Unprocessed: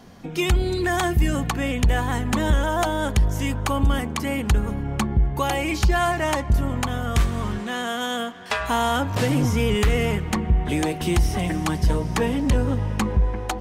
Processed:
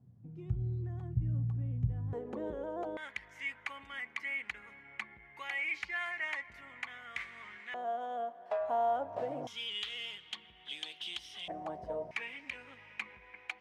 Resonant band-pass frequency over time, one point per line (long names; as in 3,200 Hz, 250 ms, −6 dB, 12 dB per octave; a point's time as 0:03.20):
resonant band-pass, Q 7.2
120 Hz
from 0:02.13 450 Hz
from 0:02.97 2,100 Hz
from 0:07.74 650 Hz
from 0:09.47 3,300 Hz
from 0:11.48 640 Hz
from 0:12.11 2,300 Hz